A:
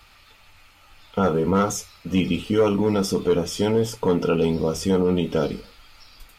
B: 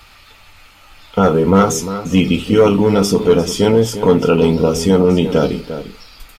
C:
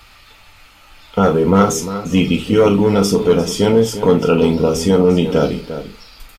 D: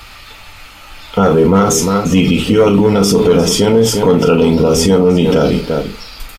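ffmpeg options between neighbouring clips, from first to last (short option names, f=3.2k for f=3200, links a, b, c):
-filter_complex "[0:a]asplit=2[a][b];[b]adelay=349.9,volume=-11dB,highshelf=f=4k:g=-7.87[c];[a][c]amix=inputs=2:normalize=0,volume=8dB"
-filter_complex "[0:a]asplit=2[a][b];[b]adelay=40,volume=-11dB[c];[a][c]amix=inputs=2:normalize=0,volume=-1dB"
-af "alimiter=level_in=11dB:limit=-1dB:release=50:level=0:latency=1,volume=-1.5dB"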